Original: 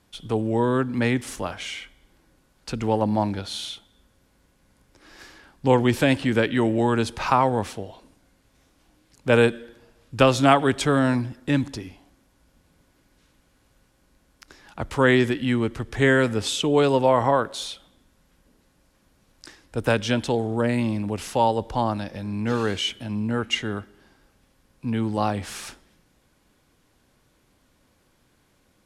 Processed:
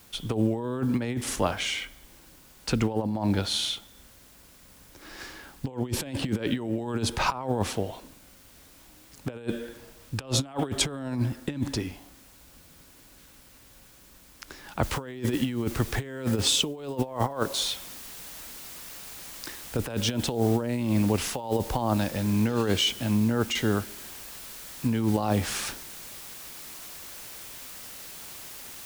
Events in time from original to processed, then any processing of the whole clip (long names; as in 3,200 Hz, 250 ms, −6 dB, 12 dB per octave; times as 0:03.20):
0:14.83: noise floor change −60 dB −47 dB
whole clip: dynamic equaliser 1,800 Hz, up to −5 dB, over −35 dBFS, Q 1.1; compressor whose output falls as the input rises −26 dBFS, ratio −0.5